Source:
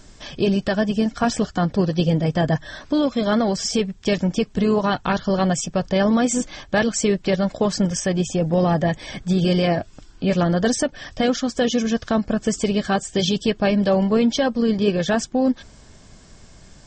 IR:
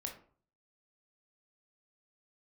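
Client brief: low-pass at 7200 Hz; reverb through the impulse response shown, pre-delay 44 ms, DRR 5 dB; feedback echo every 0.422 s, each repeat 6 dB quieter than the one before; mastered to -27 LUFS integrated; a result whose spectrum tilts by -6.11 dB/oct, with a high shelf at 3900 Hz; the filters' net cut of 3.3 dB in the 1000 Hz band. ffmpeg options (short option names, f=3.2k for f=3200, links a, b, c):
-filter_complex "[0:a]lowpass=7.2k,equalizer=f=1k:t=o:g=-4.5,highshelf=f=3.9k:g=-6.5,aecho=1:1:422|844|1266|1688|2110|2532:0.501|0.251|0.125|0.0626|0.0313|0.0157,asplit=2[a][b];[1:a]atrim=start_sample=2205,adelay=44[c];[b][c]afir=irnorm=-1:irlink=0,volume=-3.5dB[d];[a][d]amix=inputs=2:normalize=0,volume=-7.5dB"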